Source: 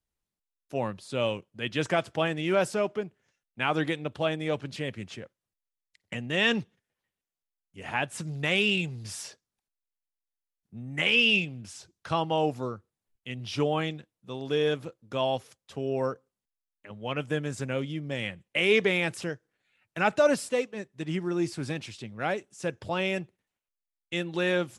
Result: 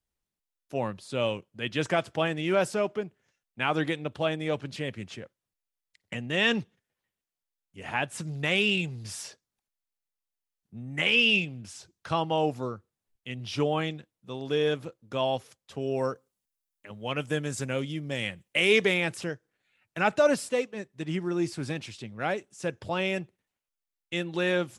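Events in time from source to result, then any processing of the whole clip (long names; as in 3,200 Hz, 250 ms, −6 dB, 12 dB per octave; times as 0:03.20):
0:15.81–0:18.94: high-shelf EQ 5,000 Hz +9 dB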